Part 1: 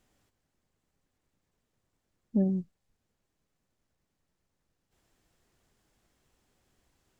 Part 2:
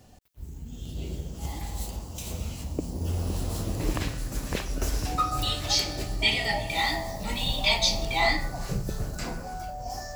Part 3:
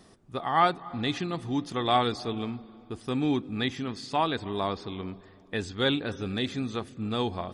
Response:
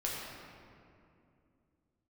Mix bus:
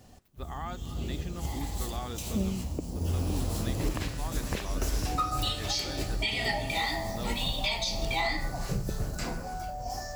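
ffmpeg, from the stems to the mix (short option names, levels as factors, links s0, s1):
-filter_complex "[0:a]volume=0.631[s0];[1:a]volume=0.944[s1];[2:a]alimiter=limit=0.112:level=0:latency=1:release=170,adelay=50,volume=0.282[s2];[s0][s1][s2]amix=inputs=3:normalize=0,alimiter=limit=0.112:level=0:latency=1:release=206"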